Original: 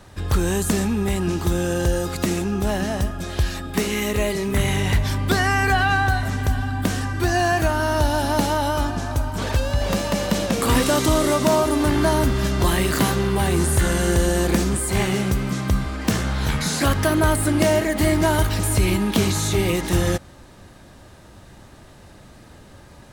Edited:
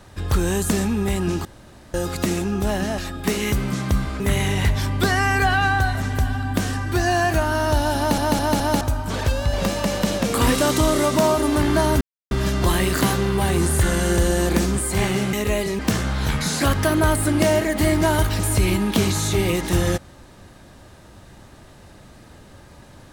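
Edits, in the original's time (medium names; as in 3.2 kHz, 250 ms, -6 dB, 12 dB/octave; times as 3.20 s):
1.45–1.94 s: room tone
2.98–3.48 s: delete
4.02–4.48 s: swap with 15.31–15.99 s
8.25 s: stutter in place 0.21 s, 4 plays
12.29 s: insert silence 0.30 s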